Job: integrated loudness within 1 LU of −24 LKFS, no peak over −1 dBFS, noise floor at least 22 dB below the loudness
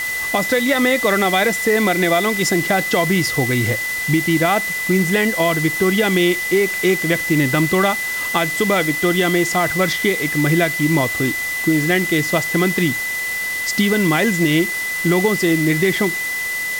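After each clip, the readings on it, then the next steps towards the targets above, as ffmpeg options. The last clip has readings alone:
interfering tone 2,000 Hz; level of the tone −21 dBFS; background noise floor −23 dBFS; target noise floor −39 dBFS; integrated loudness −17.0 LKFS; sample peak −3.5 dBFS; target loudness −24.0 LKFS
→ -af "bandreject=frequency=2000:width=30"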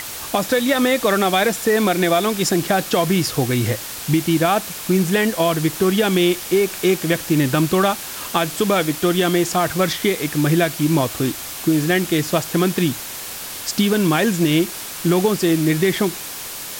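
interfering tone none found; background noise floor −31 dBFS; target noise floor −41 dBFS
→ -af "afftdn=noise_reduction=10:noise_floor=-31"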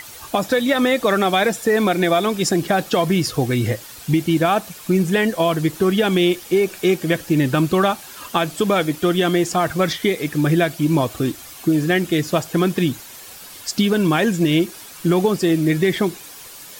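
background noise floor −39 dBFS; target noise floor −41 dBFS
→ -af "afftdn=noise_reduction=6:noise_floor=-39"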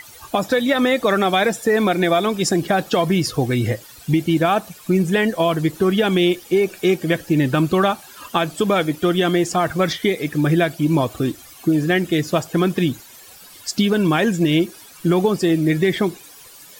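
background noise floor −43 dBFS; integrated loudness −19.0 LKFS; sample peak −5.0 dBFS; target loudness −24.0 LKFS
→ -af "volume=-5dB"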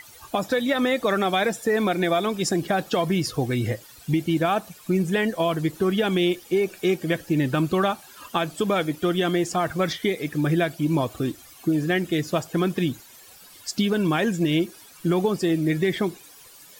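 integrated loudness −24.0 LKFS; sample peak −10.0 dBFS; background noise floor −48 dBFS

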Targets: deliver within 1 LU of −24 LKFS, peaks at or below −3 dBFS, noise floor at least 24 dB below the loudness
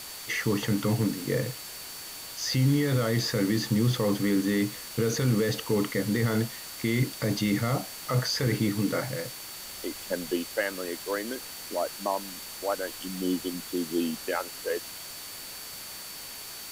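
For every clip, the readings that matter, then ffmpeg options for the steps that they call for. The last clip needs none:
interfering tone 4,500 Hz; level of the tone −46 dBFS; background noise floor −41 dBFS; target noise floor −53 dBFS; integrated loudness −29.0 LKFS; sample peak −14.0 dBFS; target loudness −24.0 LKFS
→ -af "bandreject=frequency=4500:width=30"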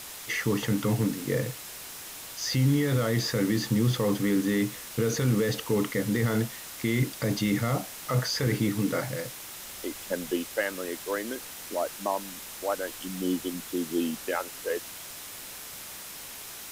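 interfering tone none found; background noise floor −42 dBFS; target noise floor −54 dBFS
→ -af "afftdn=noise_reduction=12:noise_floor=-42"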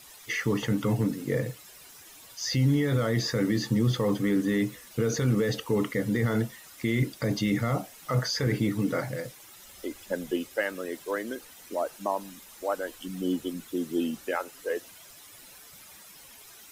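background noise floor −50 dBFS; target noise floor −53 dBFS
→ -af "afftdn=noise_reduction=6:noise_floor=-50"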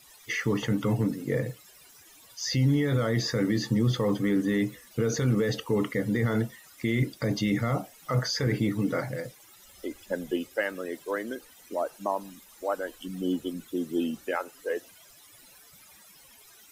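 background noise floor −55 dBFS; integrated loudness −29.0 LKFS; sample peak −14.5 dBFS; target loudness −24.0 LKFS
→ -af "volume=5dB"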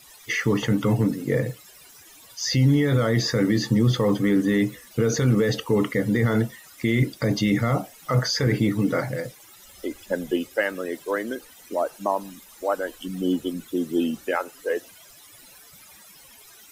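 integrated loudness −24.0 LKFS; sample peak −9.5 dBFS; background noise floor −50 dBFS

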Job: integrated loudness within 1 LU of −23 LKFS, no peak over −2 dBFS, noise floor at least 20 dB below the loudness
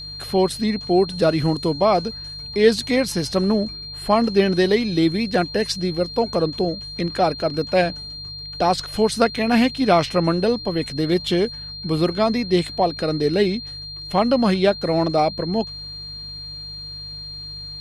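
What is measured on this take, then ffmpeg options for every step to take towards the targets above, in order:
mains hum 50 Hz; hum harmonics up to 150 Hz; level of the hum −39 dBFS; interfering tone 4,200 Hz; level of the tone −32 dBFS; integrated loudness −20.5 LKFS; sample peak −3.0 dBFS; target loudness −23.0 LKFS
→ -af "bandreject=frequency=50:width_type=h:width=4,bandreject=frequency=100:width_type=h:width=4,bandreject=frequency=150:width_type=h:width=4"
-af "bandreject=frequency=4200:width=30"
-af "volume=-2.5dB"

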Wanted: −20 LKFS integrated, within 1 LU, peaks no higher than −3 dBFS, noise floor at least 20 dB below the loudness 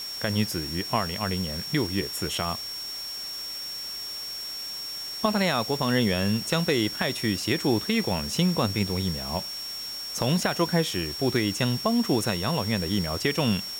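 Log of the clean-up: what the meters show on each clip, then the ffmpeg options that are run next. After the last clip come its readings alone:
interfering tone 5,500 Hz; level of the tone −33 dBFS; background noise floor −35 dBFS; target noise floor −47 dBFS; integrated loudness −26.5 LKFS; sample peak −11.0 dBFS; target loudness −20.0 LKFS
→ -af "bandreject=frequency=5500:width=30"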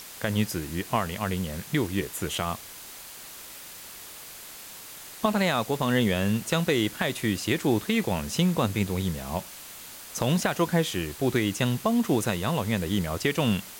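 interfering tone none found; background noise floor −44 dBFS; target noise floor −47 dBFS
→ -af "afftdn=noise_reduction=6:noise_floor=-44"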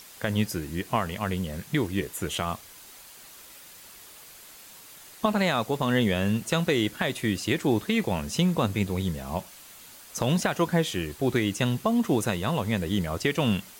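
background noise floor −48 dBFS; integrated loudness −27.0 LKFS; sample peak −11.5 dBFS; target loudness −20.0 LKFS
→ -af "volume=7dB"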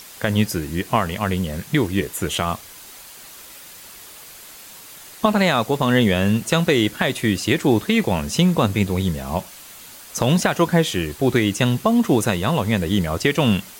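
integrated loudness −20.0 LKFS; sample peak −4.5 dBFS; background noise floor −41 dBFS

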